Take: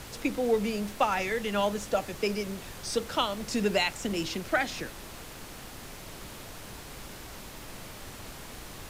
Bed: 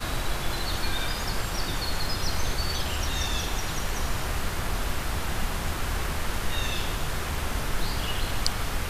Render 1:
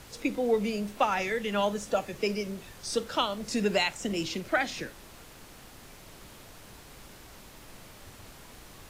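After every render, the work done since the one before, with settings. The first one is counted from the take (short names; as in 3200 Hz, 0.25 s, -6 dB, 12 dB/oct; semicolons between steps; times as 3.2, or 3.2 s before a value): noise print and reduce 6 dB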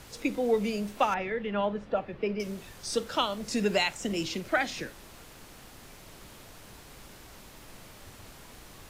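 1.14–2.4 air absorption 400 m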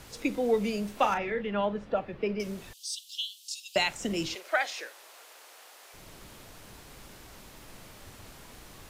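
1–1.41 doubler 35 ms -9 dB; 2.73–3.76 steep high-pass 2900 Hz 72 dB/oct; 4.35–5.94 HPF 490 Hz 24 dB/oct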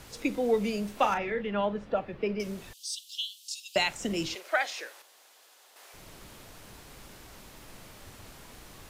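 5.02–5.76 room tone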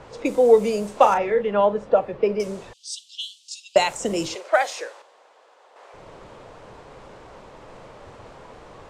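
low-pass opened by the level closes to 2400 Hz, open at -27 dBFS; ten-band EQ 125 Hz +4 dB, 500 Hz +12 dB, 1000 Hz +8 dB, 8000 Hz +10 dB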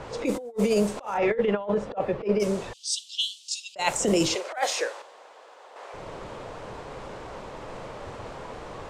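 negative-ratio compressor -24 dBFS, ratio -0.5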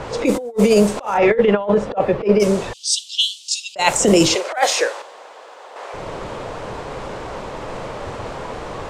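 gain +9.5 dB; limiter -1 dBFS, peak gain reduction 1 dB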